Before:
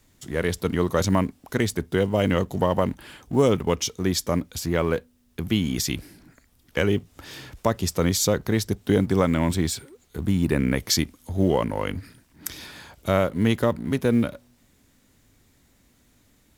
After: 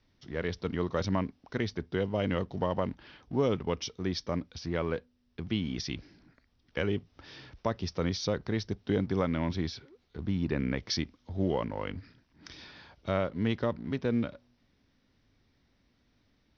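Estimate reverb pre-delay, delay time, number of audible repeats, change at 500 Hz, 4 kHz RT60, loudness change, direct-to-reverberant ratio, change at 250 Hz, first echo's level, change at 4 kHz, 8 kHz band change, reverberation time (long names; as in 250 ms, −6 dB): no reverb audible, no echo audible, no echo audible, −8.5 dB, no reverb audible, −8.5 dB, no reverb audible, −8.5 dB, no echo audible, −8.5 dB, −17.5 dB, no reverb audible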